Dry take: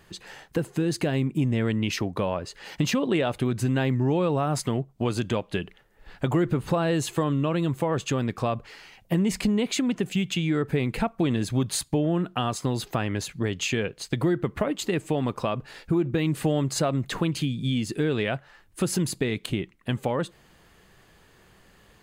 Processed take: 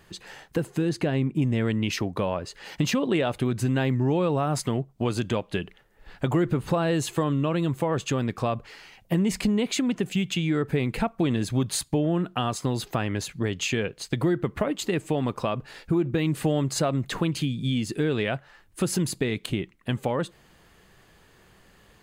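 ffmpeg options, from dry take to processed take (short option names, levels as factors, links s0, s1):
-filter_complex "[0:a]asettb=1/sr,asplit=3[s0][s1][s2];[s0]atrim=end=0.894[s3];[s1]atrim=start=0.89:end=1.42,asetpts=PTS-STARTPTS,afade=t=in:d=0.004:c=qsin,afade=t=out:st=0.526:d=0.004:c=qsin,aemphasis=mode=reproduction:type=cd[s4];[s2]atrim=start=1.416[s5];[s3][s4]acrossfade=d=0.004:c1=hsin:c2=qsin[s6];[s6][s5]acrossfade=d=0.004:c1=qsin:c2=hsin"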